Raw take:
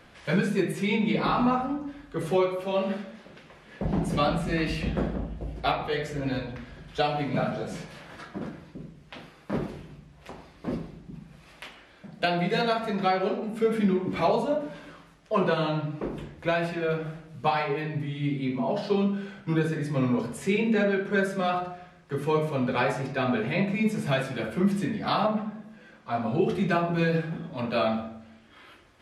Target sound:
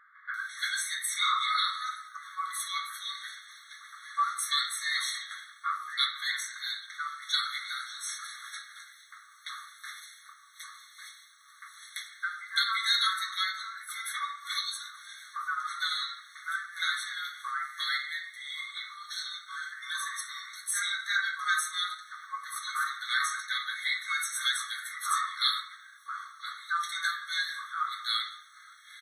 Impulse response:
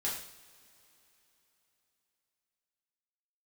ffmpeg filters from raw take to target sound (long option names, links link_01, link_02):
-filter_complex "[0:a]crystalizer=i=3:c=0,acrossover=split=1500[link_01][link_02];[link_02]adelay=340[link_03];[link_01][link_03]amix=inputs=2:normalize=0,asplit=2[link_04][link_05];[link_05]asoftclip=type=tanh:threshold=-20.5dB,volume=-12dB[link_06];[link_04][link_06]amix=inputs=2:normalize=0,afftfilt=real='re*eq(mod(floor(b*sr/1024/1100),2),1)':imag='im*eq(mod(floor(b*sr/1024/1100),2),1)':win_size=1024:overlap=0.75,volume=2.5dB"